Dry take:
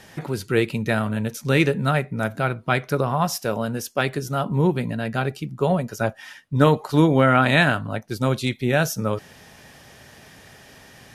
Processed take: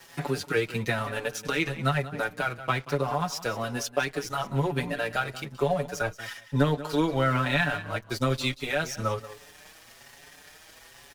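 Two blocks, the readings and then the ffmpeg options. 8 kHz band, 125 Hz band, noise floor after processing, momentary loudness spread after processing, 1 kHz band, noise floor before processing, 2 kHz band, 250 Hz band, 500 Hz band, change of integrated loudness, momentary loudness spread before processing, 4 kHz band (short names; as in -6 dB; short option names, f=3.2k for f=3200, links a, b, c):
-3.5 dB, -7.5 dB, -52 dBFS, 7 LU, -5.5 dB, -48 dBFS, -4.5 dB, -8.5 dB, -6.5 dB, -6.5 dB, 10 LU, -3.0 dB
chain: -filter_complex "[0:a]asubboost=boost=6.5:cutoff=53,acrossover=split=7200[a][b];[b]acompressor=threshold=-48dB:ratio=4:attack=1:release=60[c];[a][c]amix=inputs=2:normalize=0,lowshelf=f=320:g=-11.5,aecho=1:1:7:0.37,acrossover=split=160[d][e];[e]acompressor=threshold=-30dB:ratio=4[f];[d][f]amix=inputs=2:normalize=0,aeval=exprs='sgn(val(0))*max(abs(val(0))-0.00355,0)':c=same,asplit=2[g][h];[h]aecho=0:1:184|368:0.178|0.0285[i];[g][i]amix=inputs=2:normalize=0,asplit=2[j][k];[k]adelay=5.6,afreqshift=1.1[l];[j][l]amix=inputs=2:normalize=1,volume=8dB"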